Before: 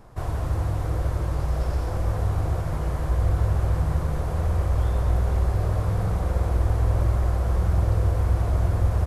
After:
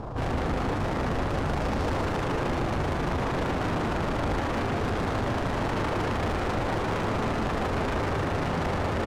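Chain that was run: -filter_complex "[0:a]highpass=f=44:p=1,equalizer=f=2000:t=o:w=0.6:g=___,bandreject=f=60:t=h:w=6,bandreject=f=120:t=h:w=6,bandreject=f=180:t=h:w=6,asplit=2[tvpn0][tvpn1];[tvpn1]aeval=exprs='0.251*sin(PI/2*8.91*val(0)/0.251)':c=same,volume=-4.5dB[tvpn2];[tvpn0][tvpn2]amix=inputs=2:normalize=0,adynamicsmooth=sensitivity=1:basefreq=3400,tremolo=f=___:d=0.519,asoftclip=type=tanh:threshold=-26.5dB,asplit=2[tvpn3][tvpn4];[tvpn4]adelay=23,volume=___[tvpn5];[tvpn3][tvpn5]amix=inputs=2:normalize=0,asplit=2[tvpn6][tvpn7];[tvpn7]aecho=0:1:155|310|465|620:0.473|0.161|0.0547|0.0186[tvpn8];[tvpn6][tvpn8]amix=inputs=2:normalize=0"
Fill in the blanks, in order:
-9.5, 26, -13.5dB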